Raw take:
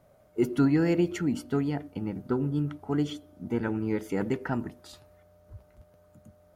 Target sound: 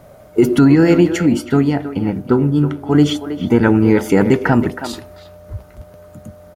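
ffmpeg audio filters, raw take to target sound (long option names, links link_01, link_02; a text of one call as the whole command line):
ffmpeg -i in.wav -filter_complex "[0:a]asettb=1/sr,asplit=3[link_01][link_02][link_03];[link_01]atrim=end=0.754[link_04];[link_02]atrim=start=0.75:end=2.95,asetpts=PTS-STARTPTS,afade=type=in:duration=0.004:curve=qsin,afade=type=out:start_time=2.196:duration=0.004:curve=qsin,flanger=delay=8.3:depth=2.7:regen=-78:speed=1.3:shape=sinusoidal[link_05];[link_03]atrim=start=2.946[link_06];[link_04][link_05]acrossfade=duration=0.004:curve1=hsin:curve2=qsin[link_07];[link_07][link_06]acrossfade=duration=0.004:curve1=qsin:curve2=hsin,asplit=2[link_08][link_09];[link_09]adelay=320,highpass=300,lowpass=3400,asoftclip=type=hard:threshold=-21.5dB,volume=-11dB[link_10];[link_08][link_10]amix=inputs=2:normalize=0,alimiter=level_in=19dB:limit=-1dB:release=50:level=0:latency=1,volume=-1dB" out.wav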